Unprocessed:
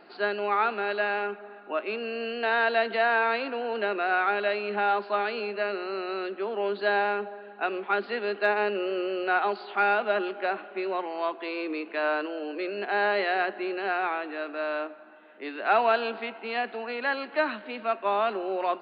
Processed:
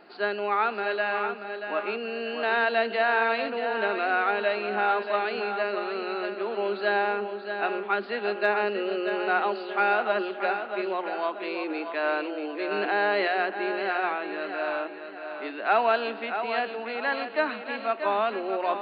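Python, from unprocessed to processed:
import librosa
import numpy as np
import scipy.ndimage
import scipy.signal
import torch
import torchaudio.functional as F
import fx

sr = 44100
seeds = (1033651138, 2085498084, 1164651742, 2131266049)

p1 = x + fx.echo_feedback(x, sr, ms=634, feedback_pct=39, wet_db=-8.0, dry=0)
y = fx.env_flatten(p1, sr, amount_pct=50, at=(12.71, 13.28))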